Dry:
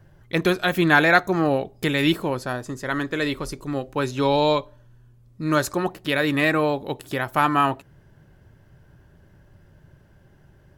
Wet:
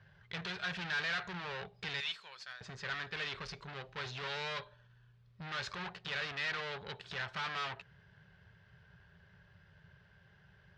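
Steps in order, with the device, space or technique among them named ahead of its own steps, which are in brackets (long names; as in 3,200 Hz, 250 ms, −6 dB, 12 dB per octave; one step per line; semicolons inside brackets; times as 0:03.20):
0:02.00–0:02.61: first difference
scooped metal amplifier (tube saturation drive 34 dB, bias 0.55; loudspeaker in its box 83–4,300 Hz, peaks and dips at 180 Hz +10 dB, 420 Hz +9 dB, 1,600 Hz +4 dB; guitar amp tone stack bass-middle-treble 10-0-10)
level +5 dB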